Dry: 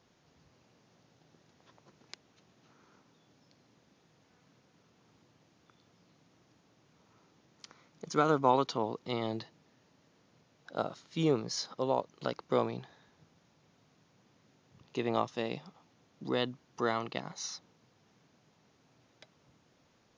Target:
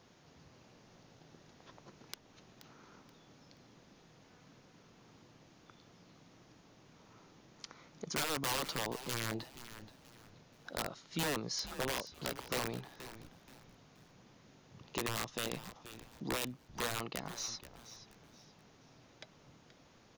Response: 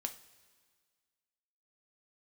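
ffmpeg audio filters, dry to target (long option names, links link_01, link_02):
-filter_complex "[0:a]aeval=exprs='(mod(17.8*val(0)+1,2)-1)/17.8':channel_layout=same,acompressor=threshold=-53dB:ratio=1.5,asplit=4[link_01][link_02][link_03][link_04];[link_02]adelay=478,afreqshift=-120,volume=-13.5dB[link_05];[link_03]adelay=956,afreqshift=-240,volume=-23.4dB[link_06];[link_04]adelay=1434,afreqshift=-360,volume=-33.3dB[link_07];[link_01][link_05][link_06][link_07]amix=inputs=4:normalize=0,volume=5dB"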